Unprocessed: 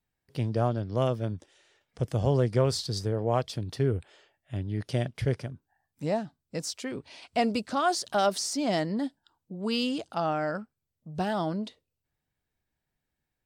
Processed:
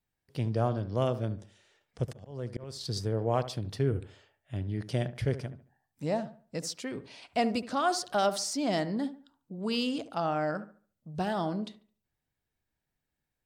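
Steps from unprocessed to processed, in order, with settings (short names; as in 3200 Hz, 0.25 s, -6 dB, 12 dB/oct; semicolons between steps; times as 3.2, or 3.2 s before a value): 2.05–2.81 auto swell 0.572 s; dark delay 72 ms, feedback 31%, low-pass 2000 Hz, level -13 dB; gain -2 dB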